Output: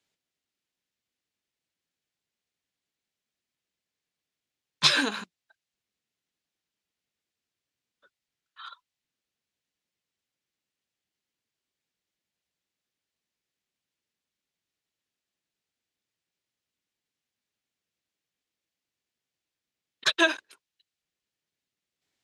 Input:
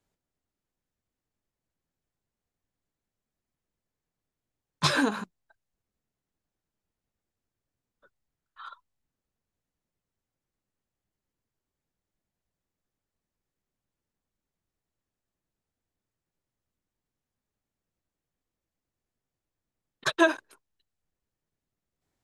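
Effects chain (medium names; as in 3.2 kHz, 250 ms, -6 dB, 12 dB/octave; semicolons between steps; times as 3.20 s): frequency weighting D; trim -3.5 dB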